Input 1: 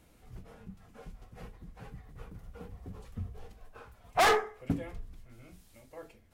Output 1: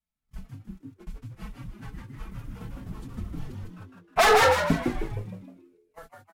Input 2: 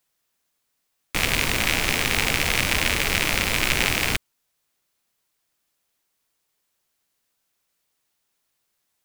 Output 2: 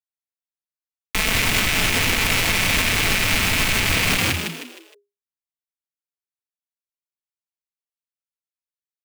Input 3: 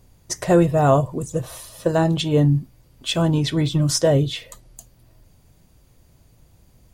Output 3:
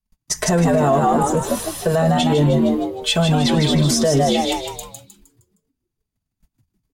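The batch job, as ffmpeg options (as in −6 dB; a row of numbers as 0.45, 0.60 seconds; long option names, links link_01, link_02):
-filter_complex "[0:a]agate=range=-37dB:threshold=-47dB:ratio=16:detection=peak,aecho=1:1:4.6:0.9,acrossover=split=240|670|4800[link_01][link_02][link_03][link_04];[link_02]aeval=exprs='sgn(val(0))*max(abs(val(0))-0.01,0)':channel_layout=same[link_05];[link_01][link_05][link_03][link_04]amix=inputs=4:normalize=0,asplit=6[link_06][link_07][link_08][link_09][link_10][link_11];[link_07]adelay=155,afreqshift=81,volume=-4dB[link_12];[link_08]adelay=310,afreqshift=162,volume=-12dB[link_13];[link_09]adelay=465,afreqshift=243,volume=-19.9dB[link_14];[link_10]adelay=620,afreqshift=324,volume=-27.9dB[link_15];[link_11]adelay=775,afreqshift=405,volume=-35.8dB[link_16];[link_06][link_12][link_13][link_14][link_15][link_16]amix=inputs=6:normalize=0,alimiter=level_in=13dB:limit=-1dB:release=50:level=0:latency=1,volume=-7.5dB"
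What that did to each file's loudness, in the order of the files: +7.5, +3.0, +2.5 LU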